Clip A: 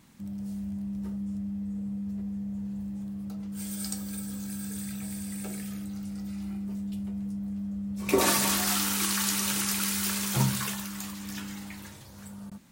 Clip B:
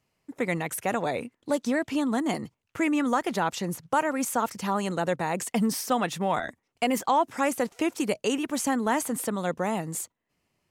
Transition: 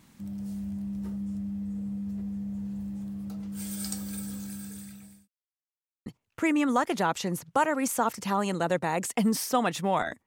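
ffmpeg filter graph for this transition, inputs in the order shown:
-filter_complex "[0:a]apad=whole_dur=10.26,atrim=end=10.26,asplit=2[s0][s1];[s0]atrim=end=5.28,asetpts=PTS-STARTPTS,afade=t=out:st=4.26:d=1.02[s2];[s1]atrim=start=5.28:end=6.06,asetpts=PTS-STARTPTS,volume=0[s3];[1:a]atrim=start=2.43:end=6.63,asetpts=PTS-STARTPTS,afade=t=in:d=0.004:c=hsin[s4];[s2][s3][s4]concat=n=3:v=0:a=1"

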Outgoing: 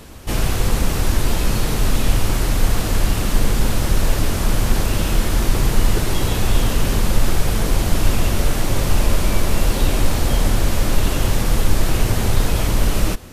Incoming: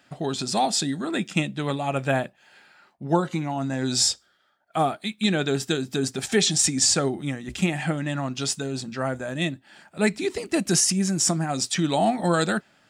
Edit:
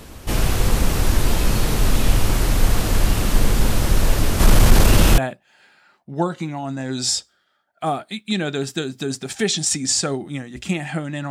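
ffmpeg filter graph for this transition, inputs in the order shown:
-filter_complex "[0:a]asplit=3[s0][s1][s2];[s0]afade=t=out:st=4.39:d=0.02[s3];[s1]acontrast=75,afade=t=in:st=4.39:d=0.02,afade=t=out:st=5.18:d=0.02[s4];[s2]afade=t=in:st=5.18:d=0.02[s5];[s3][s4][s5]amix=inputs=3:normalize=0,apad=whole_dur=11.3,atrim=end=11.3,atrim=end=5.182[s6];[1:a]atrim=start=2.108:end=8.23[s7];[s6][s7]acrossfade=d=0.004:c1=hsin:c2=hsin"

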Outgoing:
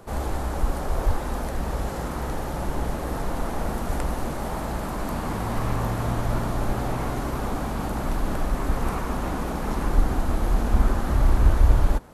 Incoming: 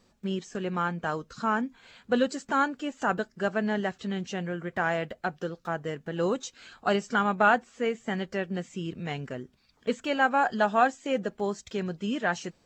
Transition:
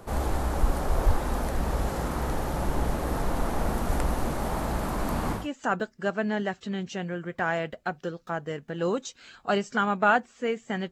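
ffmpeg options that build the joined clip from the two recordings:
-filter_complex "[0:a]apad=whole_dur=10.91,atrim=end=10.91,atrim=end=5.48,asetpts=PTS-STARTPTS[s0];[1:a]atrim=start=2.68:end=8.29,asetpts=PTS-STARTPTS[s1];[s0][s1]acrossfade=d=0.18:c1=tri:c2=tri"

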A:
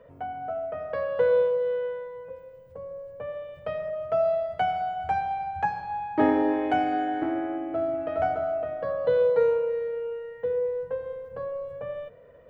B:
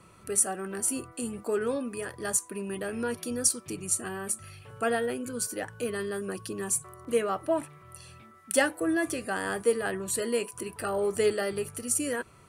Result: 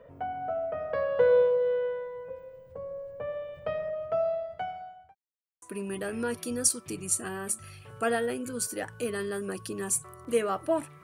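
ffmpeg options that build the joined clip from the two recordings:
-filter_complex "[0:a]apad=whole_dur=11.03,atrim=end=11.03,asplit=2[s0][s1];[s0]atrim=end=5.15,asetpts=PTS-STARTPTS,afade=t=out:st=3.64:d=1.51[s2];[s1]atrim=start=5.15:end=5.62,asetpts=PTS-STARTPTS,volume=0[s3];[1:a]atrim=start=2.42:end=7.83,asetpts=PTS-STARTPTS,afade=t=in:d=0.004:c=hsin[s4];[s2][s3][s4]concat=n=3:v=0:a=1"

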